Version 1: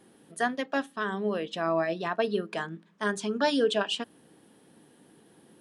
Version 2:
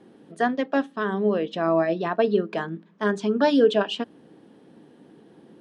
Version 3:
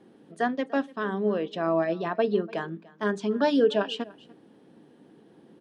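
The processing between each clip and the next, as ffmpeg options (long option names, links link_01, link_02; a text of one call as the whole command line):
ffmpeg -i in.wav -af "lowpass=5300,equalizer=frequency=310:width=0.39:gain=8" out.wav
ffmpeg -i in.wav -af "aecho=1:1:293:0.0794,volume=-3.5dB" out.wav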